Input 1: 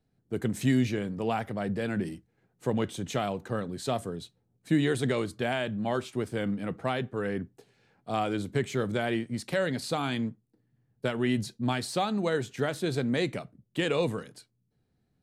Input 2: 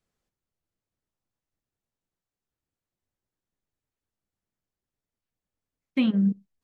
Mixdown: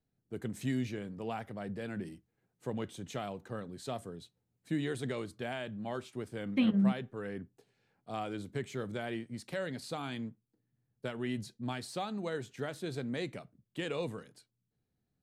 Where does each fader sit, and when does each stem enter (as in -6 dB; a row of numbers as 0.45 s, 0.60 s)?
-9.0 dB, -5.0 dB; 0.00 s, 0.60 s